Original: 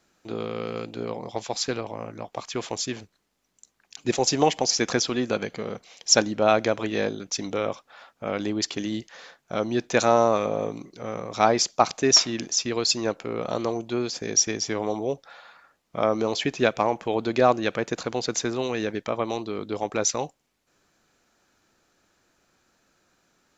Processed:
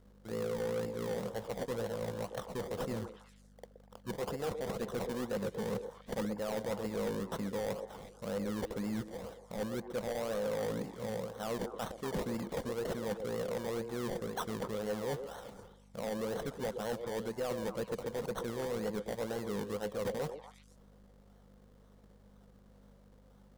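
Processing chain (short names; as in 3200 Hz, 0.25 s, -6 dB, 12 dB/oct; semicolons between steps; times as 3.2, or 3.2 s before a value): low shelf 140 Hz +11.5 dB; reverse; compressor 6:1, threshold -33 dBFS, peak gain reduction 19.5 dB; reverse; hum 50 Hz, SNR 21 dB; decimation with a swept rate 26×, swing 60% 2 Hz; thirty-one-band EQ 200 Hz +8 dB, 315 Hz -6 dB, 500 Hz +11 dB, 2500 Hz -7 dB; on a send: delay with a stepping band-pass 0.121 s, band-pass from 410 Hz, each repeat 1.4 oct, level -6 dB; on the sum: hard clip -27.5 dBFS, distortion -13 dB; gain -3 dB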